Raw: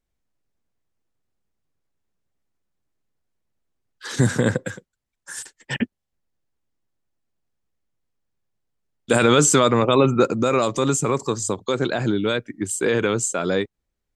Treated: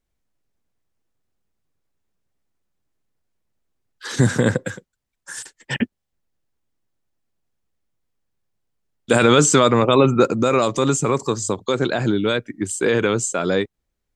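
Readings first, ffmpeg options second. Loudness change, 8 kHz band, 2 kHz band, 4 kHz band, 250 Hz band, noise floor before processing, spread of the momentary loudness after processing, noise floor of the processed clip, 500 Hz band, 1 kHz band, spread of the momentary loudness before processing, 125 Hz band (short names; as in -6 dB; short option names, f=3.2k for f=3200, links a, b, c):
+2.0 dB, 0.0 dB, +2.0 dB, +2.0 dB, +2.0 dB, -81 dBFS, 16 LU, -79 dBFS, +2.0 dB, +2.0 dB, 16 LU, +2.0 dB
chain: -filter_complex "[0:a]acrossover=split=9100[a][b];[b]acompressor=threshold=-46dB:ratio=4:attack=1:release=60[c];[a][c]amix=inputs=2:normalize=0,volume=2dB"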